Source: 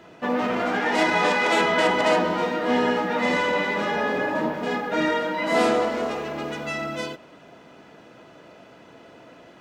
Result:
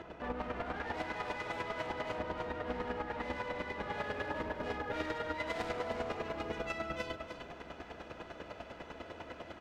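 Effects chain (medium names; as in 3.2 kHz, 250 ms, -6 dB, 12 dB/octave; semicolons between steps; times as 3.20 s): octave divider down 2 oct, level +1 dB; bass shelf 280 Hz -8.5 dB; hard clipper -24.5 dBFS, distortion -8 dB; peak limiter -31.5 dBFS, peak gain reduction 7 dB; square tremolo 10 Hz, depth 60%, duty 20%; compression, threshold -41 dBFS, peak gain reduction 7.5 dB; low-pass 1.6 kHz 6 dB/octave, from 3.92 s 4 kHz; delay 307 ms -9 dB; trim +6.5 dB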